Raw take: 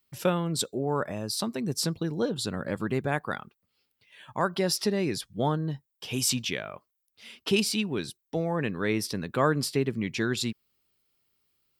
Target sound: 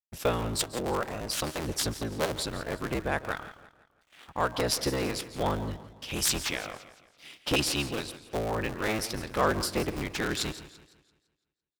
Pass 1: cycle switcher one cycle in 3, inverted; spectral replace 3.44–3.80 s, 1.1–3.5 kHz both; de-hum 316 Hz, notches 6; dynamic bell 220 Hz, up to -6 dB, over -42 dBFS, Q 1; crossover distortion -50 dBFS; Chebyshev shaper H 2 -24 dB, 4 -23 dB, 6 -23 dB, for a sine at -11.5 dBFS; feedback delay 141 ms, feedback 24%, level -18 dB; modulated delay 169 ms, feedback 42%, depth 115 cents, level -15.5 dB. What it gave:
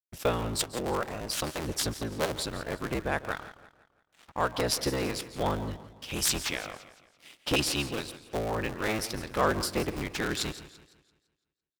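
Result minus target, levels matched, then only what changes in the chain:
crossover distortion: distortion +11 dB
change: crossover distortion -61.5 dBFS

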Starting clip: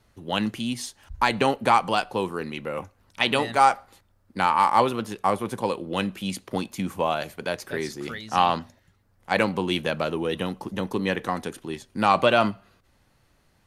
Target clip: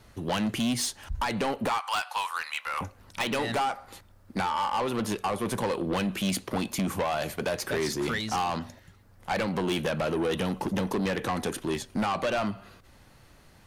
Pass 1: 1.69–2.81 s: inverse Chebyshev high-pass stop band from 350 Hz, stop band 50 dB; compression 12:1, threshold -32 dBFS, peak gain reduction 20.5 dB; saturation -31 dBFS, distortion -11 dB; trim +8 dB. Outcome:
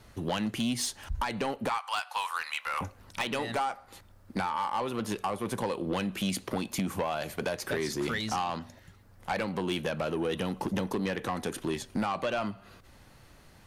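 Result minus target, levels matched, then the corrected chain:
compression: peak gain reduction +6 dB
1.69–2.81 s: inverse Chebyshev high-pass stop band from 350 Hz, stop band 50 dB; compression 12:1, threshold -25.5 dBFS, peak gain reduction 14.5 dB; saturation -31 dBFS, distortion -7 dB; trim +8 dB

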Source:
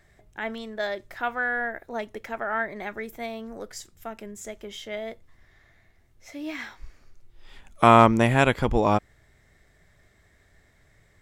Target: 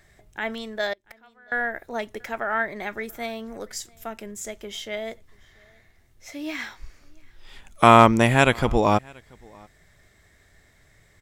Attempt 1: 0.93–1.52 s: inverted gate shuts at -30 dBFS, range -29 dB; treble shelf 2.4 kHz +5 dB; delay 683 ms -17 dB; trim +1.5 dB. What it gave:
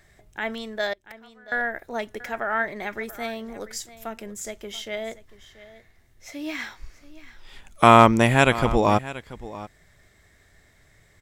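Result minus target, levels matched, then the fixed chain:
echo-to-direct +11 dB
0.93–1.52 s: inverted gate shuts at -30 dBFS, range -29 dB; treble shelf 2.4 kHz +5 dB; delay 683 ms -28 dB; trim +1.5 dB

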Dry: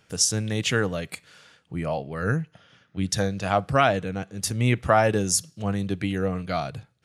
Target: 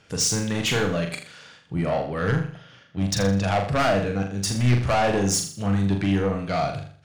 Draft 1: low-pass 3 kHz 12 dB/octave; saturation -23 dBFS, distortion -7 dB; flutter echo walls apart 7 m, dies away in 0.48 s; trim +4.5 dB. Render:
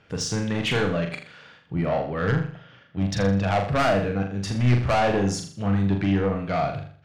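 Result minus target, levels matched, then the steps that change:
8 kHz band -8.5 dB
change: low-pass 7.7 kHz 12 dB/octave

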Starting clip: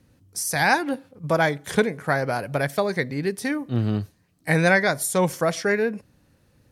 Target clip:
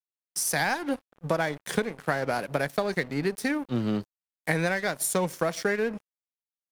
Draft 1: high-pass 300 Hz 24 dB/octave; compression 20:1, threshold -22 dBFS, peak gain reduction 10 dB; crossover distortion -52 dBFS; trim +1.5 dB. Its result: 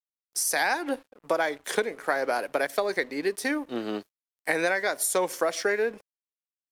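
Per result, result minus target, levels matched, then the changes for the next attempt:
125 Hz band -17.5 dB; crossover distortion: distortion -10 dB
change: high-pass 140 Hz 24 dB/octave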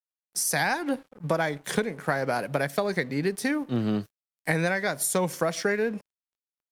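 crossover distortion: distortion -10 dB
change: crossover distortion -41 dBFS

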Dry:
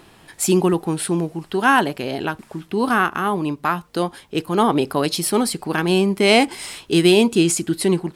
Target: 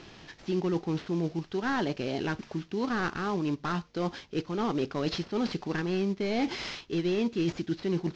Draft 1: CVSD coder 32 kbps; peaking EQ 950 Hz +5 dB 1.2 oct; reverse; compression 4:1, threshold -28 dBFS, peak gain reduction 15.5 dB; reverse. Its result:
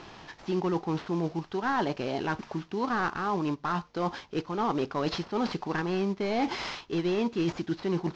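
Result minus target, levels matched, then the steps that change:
1 kHz band +4.5 dB
change: peaking EQ 950 Hz -4 dB 1.2 oct

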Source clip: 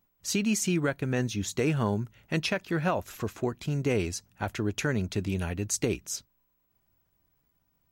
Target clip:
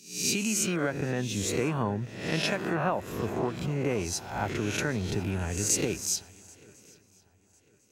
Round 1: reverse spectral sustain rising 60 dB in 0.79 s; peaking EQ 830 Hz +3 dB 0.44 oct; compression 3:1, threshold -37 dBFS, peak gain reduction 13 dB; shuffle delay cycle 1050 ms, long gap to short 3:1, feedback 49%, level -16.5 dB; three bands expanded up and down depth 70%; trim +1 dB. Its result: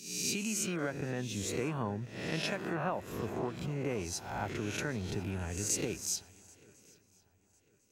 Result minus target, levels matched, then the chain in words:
compression: peak gain reduction +6.5 dB
reverse spectral sustain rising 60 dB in 0.79 s; peaking EQ 830 Hz +3 dB 0.44 oct; compression 3:1, threshold -27.5 dBFS, peak gain reduction 6.5 dB; shuffle delay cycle 1050 ms, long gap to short 3:1, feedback 49%, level -16.5 dB; three bands expanded up and down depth 70%; trim +1 dB

